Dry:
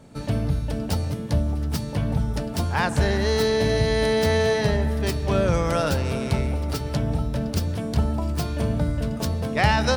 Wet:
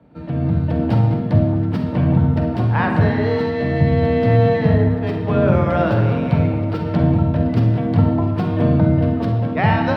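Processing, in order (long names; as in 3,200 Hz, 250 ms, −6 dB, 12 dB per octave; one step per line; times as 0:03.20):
0:03.80–0:04.94: low-shelf EQ 210 Hz +6.5 dB
automatic gain control
frequency shifter +29 Hz
0:07.48–0:07.97: steady tone 2,000 Hz −38 dBFS
high-frequency loss of the air 450 metres
on a send: convolution reverb RT60 1.0 s, pre-delay 44 ms, DRR 3.5 dB
on the sum: level −2 dB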